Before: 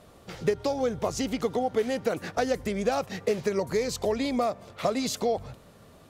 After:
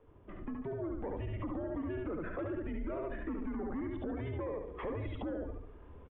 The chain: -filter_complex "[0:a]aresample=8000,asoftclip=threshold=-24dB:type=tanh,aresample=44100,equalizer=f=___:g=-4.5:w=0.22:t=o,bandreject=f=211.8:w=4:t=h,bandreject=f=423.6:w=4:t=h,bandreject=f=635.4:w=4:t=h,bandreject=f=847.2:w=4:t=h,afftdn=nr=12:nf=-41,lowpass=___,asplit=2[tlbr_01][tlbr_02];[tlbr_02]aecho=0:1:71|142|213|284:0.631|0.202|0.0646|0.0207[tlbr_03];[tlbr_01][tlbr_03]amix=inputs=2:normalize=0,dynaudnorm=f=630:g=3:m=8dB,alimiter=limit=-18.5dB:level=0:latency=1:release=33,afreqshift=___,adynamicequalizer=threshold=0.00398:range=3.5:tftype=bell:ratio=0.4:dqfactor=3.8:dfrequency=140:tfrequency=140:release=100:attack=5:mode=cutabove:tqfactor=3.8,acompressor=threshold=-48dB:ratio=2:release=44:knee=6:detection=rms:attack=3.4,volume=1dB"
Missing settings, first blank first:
250, 1800, -160